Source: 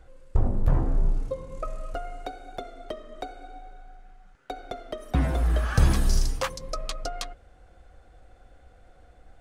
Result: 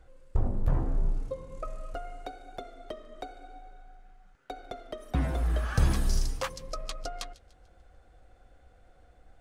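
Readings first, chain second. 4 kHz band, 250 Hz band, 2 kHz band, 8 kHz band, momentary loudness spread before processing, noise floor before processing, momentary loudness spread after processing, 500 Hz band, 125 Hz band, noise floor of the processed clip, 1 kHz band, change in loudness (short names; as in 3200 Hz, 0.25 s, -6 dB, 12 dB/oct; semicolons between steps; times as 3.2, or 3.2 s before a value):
-4.5 dB, -4.5 dB, -4.5 dB, -4.5 dB, 17 LU, -56 dBFS, 17 LU, -4.5 dB, -4.5 dB, -60 dBFS, -4.5 dB, -4.5 dB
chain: thin delay 0.147 s, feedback 43%, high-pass 2500 Hz, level -19.5 dB; gain -4.5 dB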